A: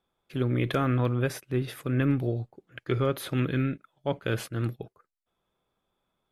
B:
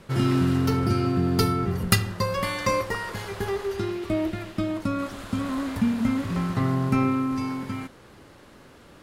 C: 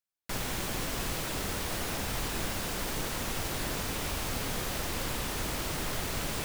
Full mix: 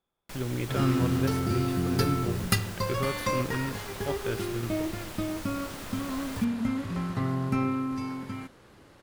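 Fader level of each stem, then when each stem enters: -5.5 dB, -5.0 dB, -8.0 dB; 0.00 s, 0.60 s, 0.00 s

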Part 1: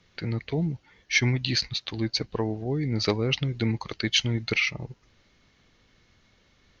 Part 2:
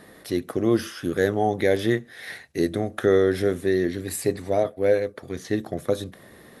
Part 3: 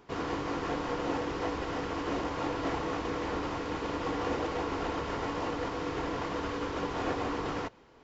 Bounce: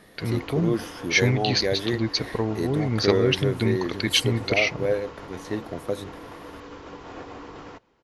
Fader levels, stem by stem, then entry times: +2.0 dB, -4.5 dB, -7.0 dB; 0.00 s, 0.00 s, 0.10 s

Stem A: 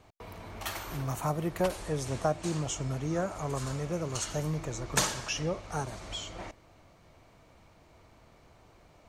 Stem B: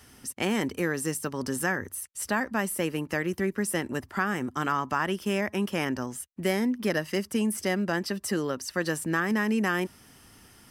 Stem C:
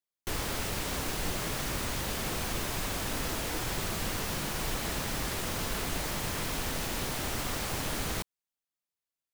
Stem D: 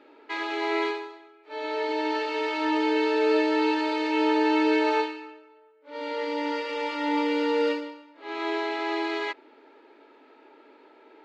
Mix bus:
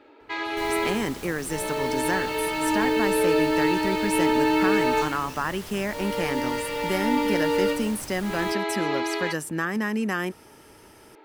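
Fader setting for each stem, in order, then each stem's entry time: -15.5 dB, -0.5 dB, -7.5 dB, +1.0 dB; 0.00 s, 0.45 s, 0.30 s, 0.00 s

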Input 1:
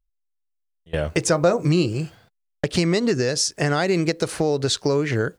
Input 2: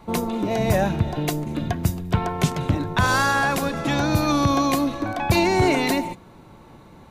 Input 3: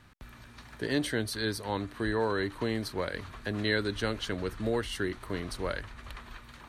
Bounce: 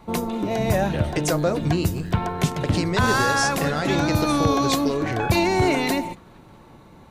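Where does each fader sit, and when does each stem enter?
-5.0 dB, -1.0 dB, -12.0 dB; 0.00 s, 0.00 s, 0.00 s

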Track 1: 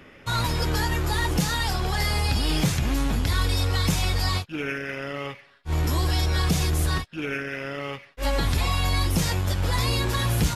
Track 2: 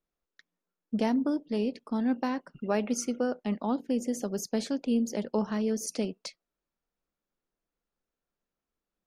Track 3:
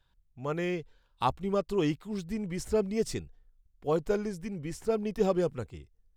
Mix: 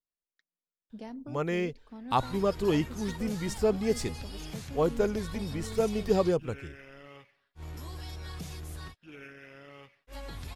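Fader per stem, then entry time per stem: -18.0 dB, -15.5 dB, +1.5 dB; 1.90 s, 0.00 s, 0.90 s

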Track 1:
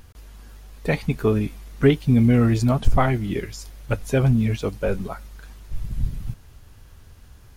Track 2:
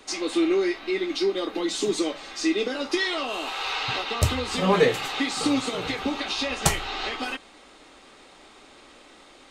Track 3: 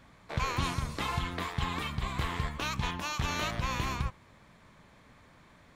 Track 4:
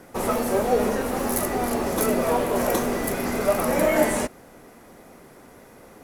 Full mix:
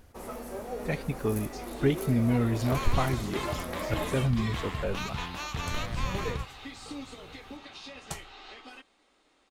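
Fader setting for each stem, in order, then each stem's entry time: -9.0 dB, -17.0 dB, -2.5 dB, -16.0 dB; 0.00 s, 1.45 s, 2.35 s, 0.00 s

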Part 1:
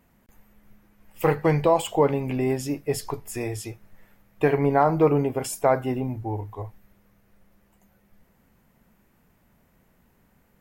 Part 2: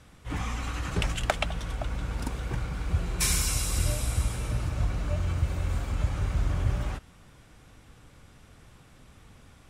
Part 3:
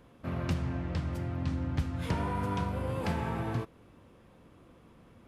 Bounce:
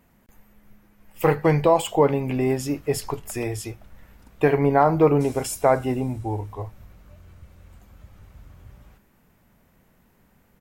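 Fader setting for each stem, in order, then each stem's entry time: +2.0 dB, -20.0 dB, mute; 0.00 s, 2.00 s, mute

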